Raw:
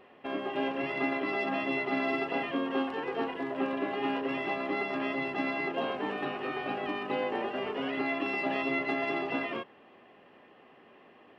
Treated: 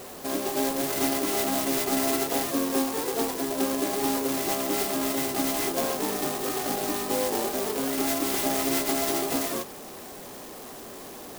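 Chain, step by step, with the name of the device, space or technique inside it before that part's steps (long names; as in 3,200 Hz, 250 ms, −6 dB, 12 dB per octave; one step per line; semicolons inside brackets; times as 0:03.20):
early CD player with a faulty converter (converter with a step at zero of −41.5 dBFS; converter with an unsteady clock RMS 0.13 ms)
level +4 dB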